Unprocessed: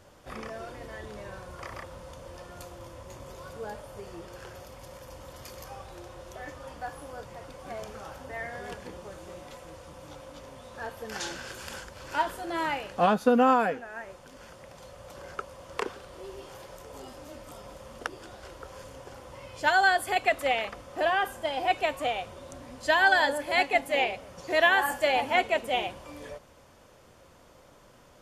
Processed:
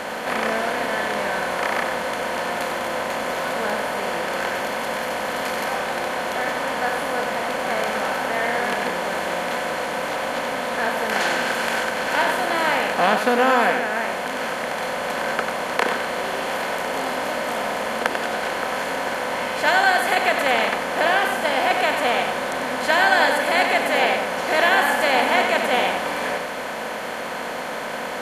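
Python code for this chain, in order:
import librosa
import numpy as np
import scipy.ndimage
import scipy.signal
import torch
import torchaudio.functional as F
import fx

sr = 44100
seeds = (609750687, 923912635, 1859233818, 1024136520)

y = fx.bin_compress(x, sr, power=0.4)
y = fx.low_shelf(y, sr, hz=130.0, db=-11.0)
y = y + 10.0 ** (-7.0 / 20.0) * np.pad(y, (int(94 * sr / 1000.0), 0))[:len(y)]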